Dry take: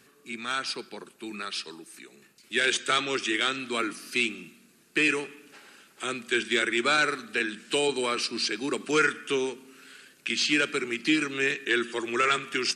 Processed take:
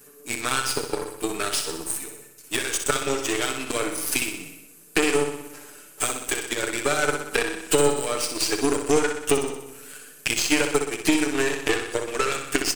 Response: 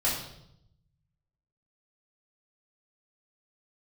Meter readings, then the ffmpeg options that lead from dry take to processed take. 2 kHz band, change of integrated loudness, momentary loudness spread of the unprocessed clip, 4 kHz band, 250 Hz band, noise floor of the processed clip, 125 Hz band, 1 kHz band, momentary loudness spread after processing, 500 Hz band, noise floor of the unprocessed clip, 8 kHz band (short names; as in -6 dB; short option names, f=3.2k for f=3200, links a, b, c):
-1.0 dB, +2.5 dB, 13 LU, +0.5 dB, +4.0 dB, -49 dBFS, +9.0 dB, +2.0 dB, 11 LU, +6.0 dB, -60 dBFS, +10.5 dB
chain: -filter_complex "[0:a]aemphasis=mode=production:type=75kf,acontrast=38,equalizer=f=500:t=o:w=1:g=8,equalizer=f=2k:t=o:w=1:g=-4,equalizer=f=4k:t=o:w=1:g=-10,acompressor=threshold=-28dB:ratio=12,aecho=1:1:6.8:0.82,aeval=exprs='0.2*(cos(1*acos(clip(val(0)/0.2,-1,1)))-cos(1*PI/2))+0.0631*(cos(2*acos(clip(val(0)/0.2,-1,1)))-cos(2*PI/2))+0.00562*(cos(3*acos(clip(val(0)/0.2,-1,1)))-cos(3*PI/2))+0.02*(cos(7*acos(clip(val(0)/0.2,-1,1)))-cos(7*PI/2))':c=same,aecho=1:1:62|124|186|248|310|372|434|496:0.447|0.264|0.155|0.0917|0.0541|0.0319|0.0188|0.0111,asplit=2[a][b];[1:a]atrim=start_sample=2205[c];[b][c]afir=irnorm=-1:irlink=0,volume=-29dB[d];[a][d]amix=inputs=2:normalize=0,volume=6.5dB"